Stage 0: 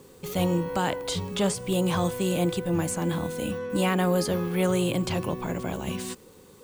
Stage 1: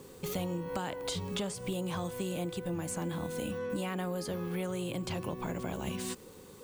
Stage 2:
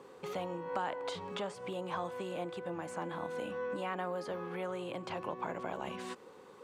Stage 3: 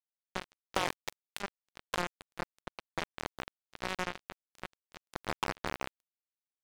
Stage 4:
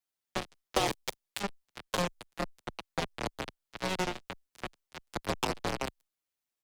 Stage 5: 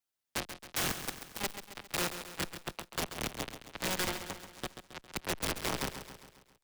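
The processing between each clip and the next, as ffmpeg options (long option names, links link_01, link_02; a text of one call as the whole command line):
ffmpeg -i in.wav -af "acompressor=threshold=-32dB:ratio=10" out.wav
ffmpeg -i in.wav -af "bandpass=frequency=990:width_type=q:width=0.87:csg=0,volume=3.5dB" out.wav
ffmpeg -i in.wav -af "aeval=exprs='0.0891*(cos(1*acos(clip(val(0)/0.0891,-1,1)))-cos(1*PI/2))+0.0178*(cos(7*acos(clip(val(0)/0.0891,-1,1)))-cos(7*PI/2))':channel_layout=same,acrusher=bits=4:mix=0:aa=0.5,volume=5dB" out.wav
ffmpeg -i in.wav -filter_complex "[0:a]acrossover=split=250|1000|2600[link_01][link_02][link_03][link_04];[link_03]acompressor=threshold=-48dB:ratio=6[link_05];[link_01][link_02][link_05][link_04]amix=inputs=4:normalize=0,asplit=2[link_06][link_07];[link_07]adelay=6.8,afreqshift=-2.1[link_08];[link_06][link_08]amix=inputs=2:normalize=1,volume=9dB" out.wav
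ffmpeg -i in.wav -filter_complex "[0:a]aeval=exprs='(mod(20*val(0)+1,2)-1)/20':channel_layout=same,asplit=2[link_01][link_02];[link_02]aecho=0:1:135|270|405|540|675|810:0.316|0.171|0.0922|0.0498|0.0269|0.0145[link_03];[link_01][link_03]amix=inputs=2:normalize=0" out.wav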